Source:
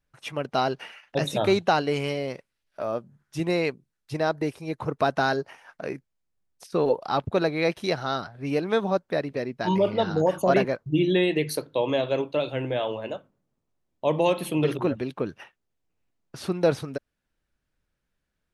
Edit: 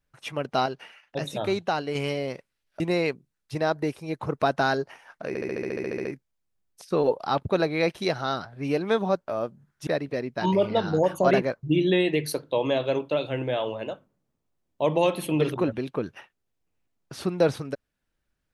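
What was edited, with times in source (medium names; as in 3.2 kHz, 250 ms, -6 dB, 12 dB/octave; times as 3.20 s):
0.66–1.95 s: gain -5 dB
2.80–3.39 s: move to 9.10 s
5.87 s: stutter 0.07 s, 12 plays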